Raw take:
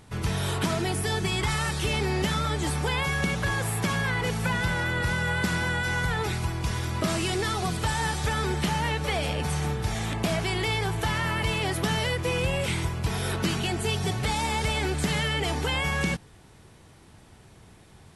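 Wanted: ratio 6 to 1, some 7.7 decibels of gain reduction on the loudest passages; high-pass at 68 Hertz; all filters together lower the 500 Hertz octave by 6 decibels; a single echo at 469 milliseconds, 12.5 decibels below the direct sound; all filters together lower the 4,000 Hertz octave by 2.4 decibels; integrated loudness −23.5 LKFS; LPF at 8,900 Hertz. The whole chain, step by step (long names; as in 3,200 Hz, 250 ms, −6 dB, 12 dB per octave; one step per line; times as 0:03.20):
high-pass filter 68 Hz
low-pass filter 8,900 Hz
parametric band 500 Hz −8 dB
parametric band 4,000 Hz −3 dB
downward compressor 6 to 1, threshold −32 dBFS
single-tap delay 469 ms −12.5 dB
level +11.5 dB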